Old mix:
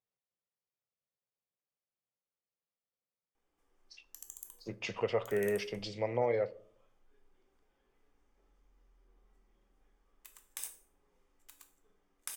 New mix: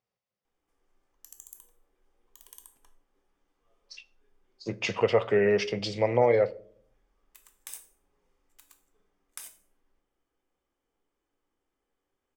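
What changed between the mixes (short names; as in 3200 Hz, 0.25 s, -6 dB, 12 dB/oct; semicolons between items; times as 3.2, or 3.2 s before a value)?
speech +9.0 dB; background: entry -2.90 s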